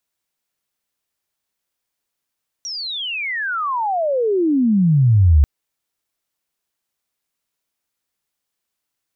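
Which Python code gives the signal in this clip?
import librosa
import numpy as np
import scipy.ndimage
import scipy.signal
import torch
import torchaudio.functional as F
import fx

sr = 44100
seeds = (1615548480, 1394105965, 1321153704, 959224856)

y = fx.chirp(sr, length_s=2.79, from_hz=5800.0, to_hz=68.0, law='logarithmic', from_db=-25.0, to_db=-7.5)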